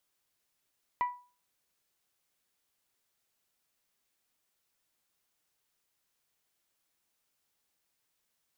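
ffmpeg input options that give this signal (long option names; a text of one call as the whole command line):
ffmpeg -f lavfi -i "aevalsrc='0.0668*pow(10,-3*t/0.37)*sin(2*PI*982*t)+0.0178*pow(10,-3*t/0.228)*sin(2*PI*1964*t)+0.00473*pow(10,-3*t/0.2)*sin(2*PI*2356.8*t)+0.00126*pow(10,-3*t/0.171)*sin(2*PI*2946*t)+0.000335*pow(10,-3*t/0.14)*sin(2*PI*3928*t)':duration=0.89:sample_rate=44100" out.wav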